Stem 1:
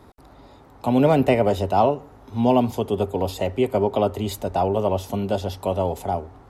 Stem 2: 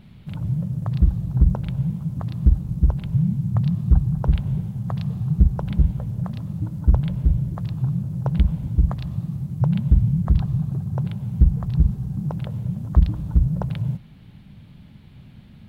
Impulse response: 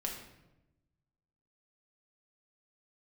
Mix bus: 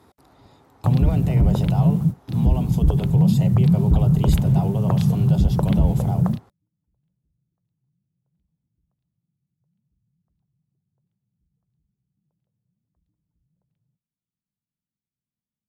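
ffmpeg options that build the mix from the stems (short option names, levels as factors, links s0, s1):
-filter_complex "[0:a]highpass=80,highshelf=f=10000:g=-7,alimiter=limit=0.141:level=0:latency=1:release=47,volume=0.562,asplit=2[s0][s1];[1:a]equalizer=f=330:w=0.51:g=10,alimiter=limit=0.266:level=0:latency=1:release=40,volume=1.33[s2];[s1]apad=whole_len=691741[s3];[s2][s3]sidechaingate=range=0.00141:threshold=0.00447:ratio=16:detection=peak[s4];[s0][s4]amix=inputs=2:normalize=0,aemphasis=mode=production:type=cd,bandreject=f=580:w=17"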